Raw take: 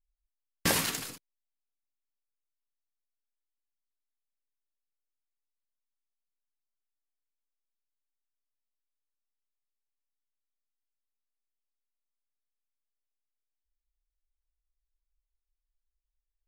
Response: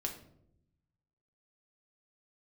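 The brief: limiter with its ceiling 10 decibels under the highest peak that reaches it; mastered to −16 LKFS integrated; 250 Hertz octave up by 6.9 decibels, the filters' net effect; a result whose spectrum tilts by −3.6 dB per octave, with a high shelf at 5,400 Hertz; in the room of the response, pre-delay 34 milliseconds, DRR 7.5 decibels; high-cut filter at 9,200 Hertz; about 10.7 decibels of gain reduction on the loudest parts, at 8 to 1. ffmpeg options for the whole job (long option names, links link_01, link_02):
-filter_complex "[0:a]lowpass=9200,equalizer=frequency=250:width_type=o:gain=9,highshelf=frequency=5400:gain=-7.5,acompressor=threshold=-31dB:ratio=8,alimiter=level_in=4dB:limit=-24dB:level=0:latency=1,volume=-4dB,asplit=2[link_01][link_02];[1:a]atrim=start_sample=2205,adelay=34[link_03];[link_02][link_03]afir=irnorm=-1:irlink=0,volume=-8dB[link_04];[link_01][link_04]amix=inputs=2:normalize=0,volume=24dB"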